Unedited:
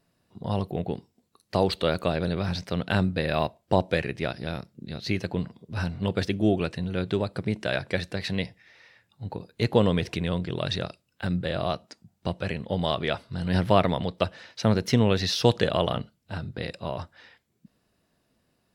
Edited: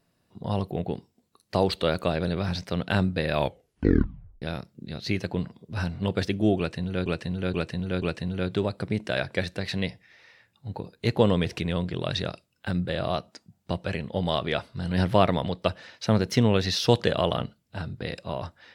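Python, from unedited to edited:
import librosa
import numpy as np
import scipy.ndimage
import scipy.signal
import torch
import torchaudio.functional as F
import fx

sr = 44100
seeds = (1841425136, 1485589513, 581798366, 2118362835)

y = fx.edit(x, sr, fx.tape_stop(start_s=3.33, length_s=1.09),
    fx.repeat(start_s=6.58, length_s=0.48, count=4), tone=tone)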